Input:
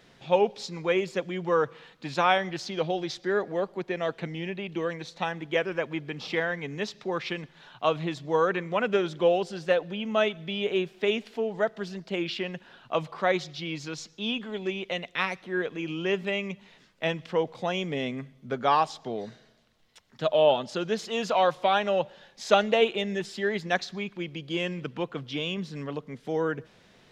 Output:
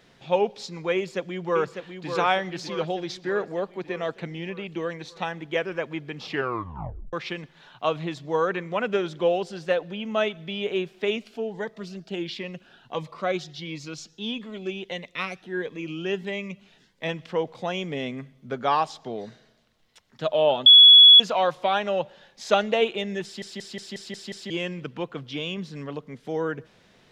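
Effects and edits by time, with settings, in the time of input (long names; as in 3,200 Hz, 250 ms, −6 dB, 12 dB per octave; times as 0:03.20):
0:00.95–0:02.09: delay throw 600 ms, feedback 60%, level −7 dB
0:06.26: tape stop 0.87 s
0:11.16–0:17.09: phaser whose notches keep moving one way rising 1.5 Hz
0:20.66–0:21.20: beep over 3,380 Hz −7 dBFS
0:23.24: stutter in place 0.18 s, 7 plays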